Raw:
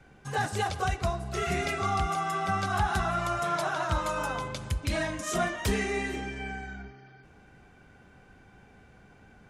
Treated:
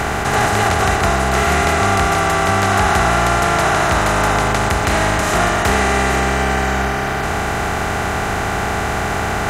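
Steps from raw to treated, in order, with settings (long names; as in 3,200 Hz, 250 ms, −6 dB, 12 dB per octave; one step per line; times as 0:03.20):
compressor on every frequency bin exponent 0.2
level +5 dB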